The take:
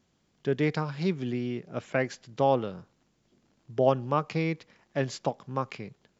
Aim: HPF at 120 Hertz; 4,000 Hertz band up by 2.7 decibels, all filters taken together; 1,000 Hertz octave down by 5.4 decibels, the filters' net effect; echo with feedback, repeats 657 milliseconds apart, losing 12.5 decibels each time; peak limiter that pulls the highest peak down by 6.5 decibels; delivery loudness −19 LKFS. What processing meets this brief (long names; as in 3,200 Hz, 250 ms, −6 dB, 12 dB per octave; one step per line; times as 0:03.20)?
high-pass filter 120 Hz
parametric band 1,000 Hz −7.5 dB
parametric band 4,000 Hz +4 dB
brickwall limiter −18.5 dBFS
repeating echo 657 ms, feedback 24%, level −12.5 dB
level +14.5 dB